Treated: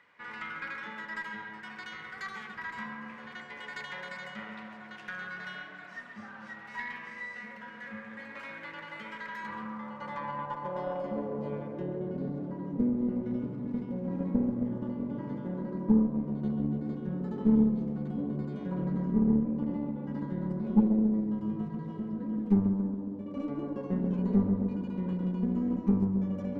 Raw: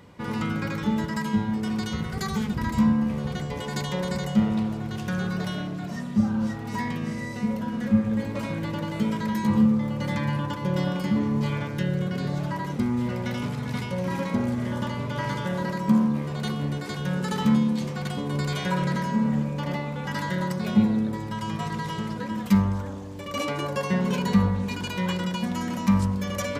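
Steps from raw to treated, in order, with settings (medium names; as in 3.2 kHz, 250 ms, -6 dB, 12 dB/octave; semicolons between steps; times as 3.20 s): band-pass sweep 1.8 kHz -> 270 Hz, 9.22–12.36 s; tape echo 136 ms, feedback 79%, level -5.5 dB, low-pass 1.7 kHz; Chebyshev shaper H 4 -18 dB, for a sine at -13 dBFS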